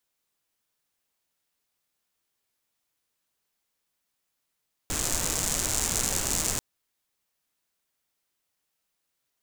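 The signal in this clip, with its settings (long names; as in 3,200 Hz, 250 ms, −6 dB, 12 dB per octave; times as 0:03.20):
rain-like ticks over hiss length 1.69 s, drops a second 160, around 7,200 Hz, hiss −2 dB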